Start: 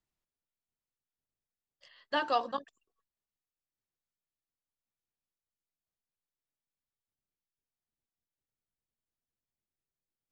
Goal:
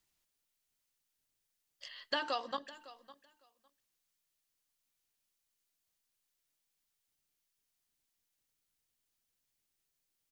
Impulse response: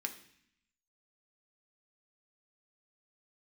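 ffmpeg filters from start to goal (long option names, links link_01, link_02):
-filter_complex "[0:a]asplit=2[link_01][link_02];[link_02]equalizer=frequency=1100:width_type=o:width=0.35:gain=-5[link_03];[1:a]atrim=start_sample=2205,asetrate=52920,aresample=44100[link_04];[link_03][link_04]afir=irnorm=-1:irlink=0,volume=-12.5dB[link_05];[link_01][link_05]amix=inputs=2:normalize=0,acompressor=threshold=-36dB:ratio=12,highshelf=frequency=2000:gain=9.5,aecho=1:1:556|1112:0.126|0.0189,volume=2dB"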